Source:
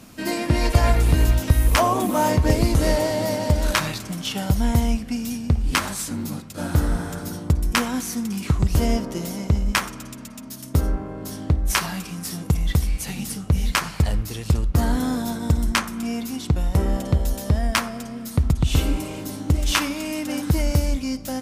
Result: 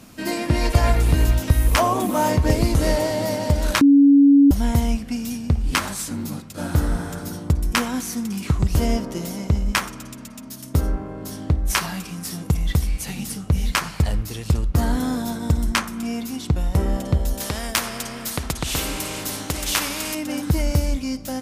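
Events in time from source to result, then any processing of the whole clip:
0:03.81–0:04.51: beep over 281 Hz −8.5 dBFS
0:17.40–0:20.15: every bin compressed towards the loudest bin 2 to 1

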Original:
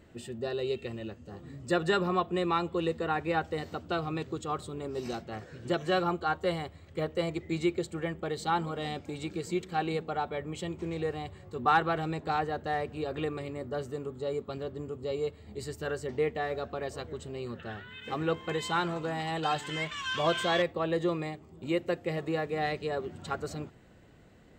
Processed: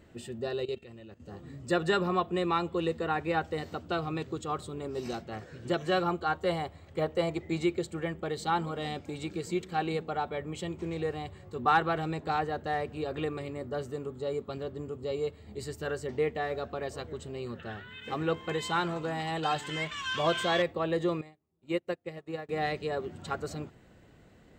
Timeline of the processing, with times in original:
0:00.65–0:01.20: output level in coarse steps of 16 dB
0:06.49–0:07.64: parametric band 780 Hz +5.5 dB 0.94 octaves
0:21.21–0:22.49: expander for the loud parts 2.5 to 1, over −44 dBFS

